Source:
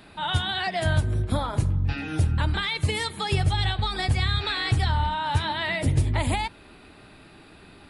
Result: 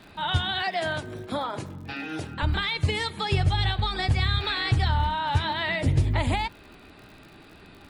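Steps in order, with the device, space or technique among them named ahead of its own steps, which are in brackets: 0.62–2.43 HPF 260 Hz 12 dB/oct; lo-fi chain (LPF 6500 Hz 12 dB/oct; wow and flutter 18 cents; crackle 73/s -42 dBFS)

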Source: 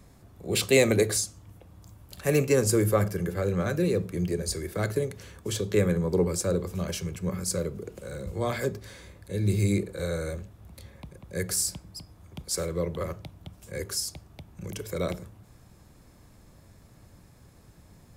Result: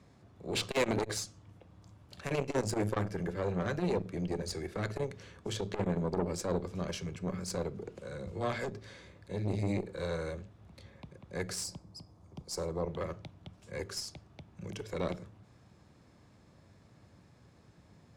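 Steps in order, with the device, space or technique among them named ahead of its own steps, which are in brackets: valve radio (BPF 88–5400 Hz; tube stage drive 21 dB, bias 0.7; core saturation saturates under 390 Hz); 11.64–12.88 band shelf 2300 Hz -8.5 dB

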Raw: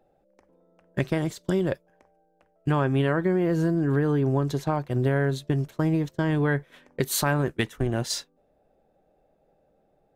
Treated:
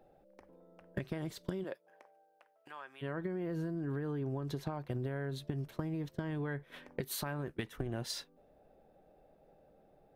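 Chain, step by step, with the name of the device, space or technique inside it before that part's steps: serial compression, peaks first (compressor, threshold -31 dBFS, peak gain reduction 11.5 dB; compressor 3:1, threshold -37 dBFS, peak gain reduction 7.5 dB); 1.63–3.01 HPF 330 Hz -> 1300 Hz 12 dB/oct; bell 7100 Hz -7 dB 0.6 oct; gain +1.5 dB

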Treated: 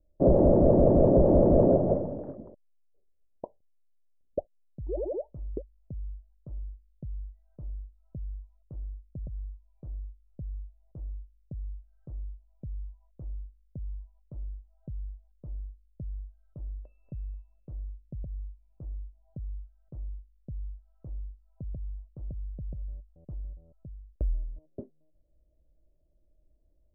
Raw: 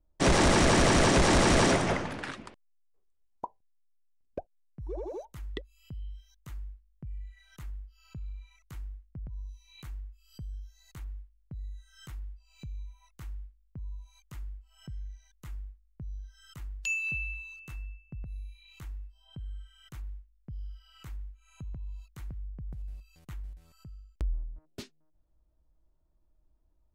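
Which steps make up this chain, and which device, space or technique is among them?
under water (LPF 570 Hz 24 dB/oct; bell 590 Hz +10.5 dB 0.49 oct); gain +2.5 dB

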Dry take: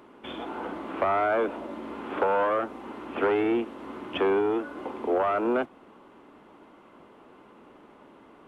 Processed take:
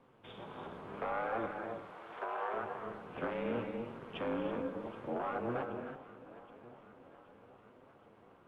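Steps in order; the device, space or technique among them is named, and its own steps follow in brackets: 1.59–2.54 steep high-pass 530 Hz 48 dB/oct; echo with dull and thin repeats by turns 0.387 s, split 1200 Hz, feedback 76%, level -14 dB; non-linear reverb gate 0.35 s rising, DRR 4.5 dB; alien voice (ring modulator 120 Hz; flange 0.76 Hz, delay 7.3 ms, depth 5 ms, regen -44%); gain -6 dB

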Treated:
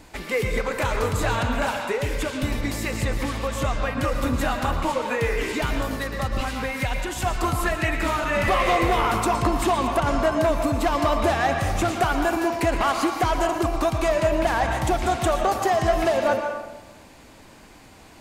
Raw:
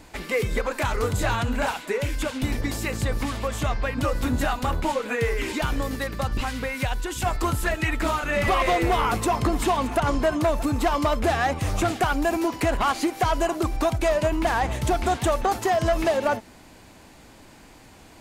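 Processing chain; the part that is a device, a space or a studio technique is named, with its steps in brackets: filtered reverb send (on a send: HPF 440 Hz 6 dB/oct + LPF 7300 Hz + reverb RT60 1.2 s, pre-delay 0.107 s, DRR 3.5 dB)

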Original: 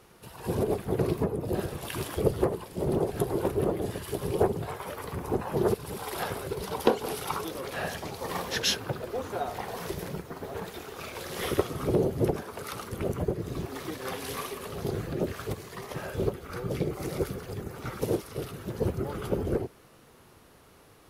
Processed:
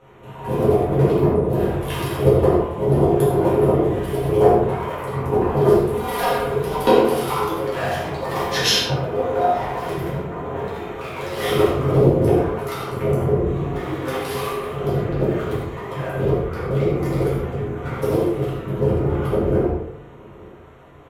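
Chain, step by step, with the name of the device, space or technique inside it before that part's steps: Wiener smoothing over 9 samples; 5.91–6.48 comb 4.2 ms, depth 85%; bathroom (reverb RT60 0.75 s, pre-delay 4 ms, DRR -6.5 dB); outdoor echo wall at 150 m, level -24 dB; non-linear reverb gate 0.12 s flat, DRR 1 dB; gain +1 dB

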